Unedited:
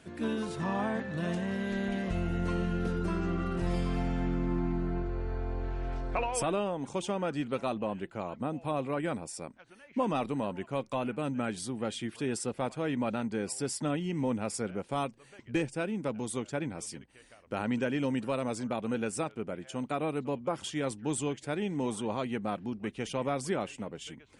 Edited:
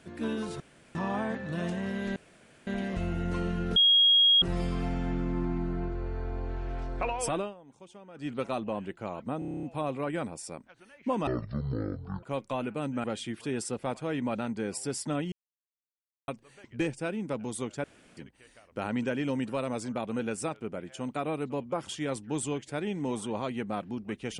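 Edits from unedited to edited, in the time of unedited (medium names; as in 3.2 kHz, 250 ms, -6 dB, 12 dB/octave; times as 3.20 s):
0.60 s: insert room tone 0.35 s
1.81 s: insert room tone 0.51 s
2.90–3.56 s: bleep 3.28 kHz -17.5 dBFS
6.51–7.45 s: dip -17.5 dB, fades 0.17 s
8.53 s: stutter 0.03 s, 9 plays
10.17–10.65 s: speed 50%
11.46–11.79 s: delete
14.07–15.03 s: mute
16.59–16.92 s: room tone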